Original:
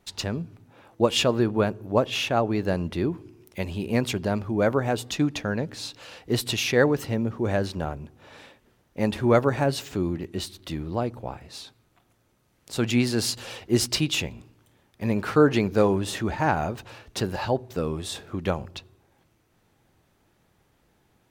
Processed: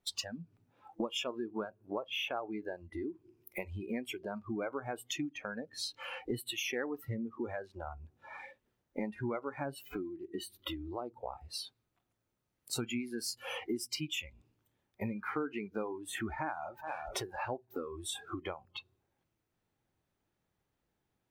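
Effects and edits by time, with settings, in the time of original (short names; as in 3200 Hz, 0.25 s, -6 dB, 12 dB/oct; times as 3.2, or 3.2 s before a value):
16.04–16.87 echo throw 0.42 s, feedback 35%, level -17.5 dB
whole clip: dynamic EQ 510 Hz, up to -4 dB, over -35 dBFS, Q 1.4; compressor 10:1, threshold -37 dBFS; spectral noise reduction 22 dB; gain +4.5 dB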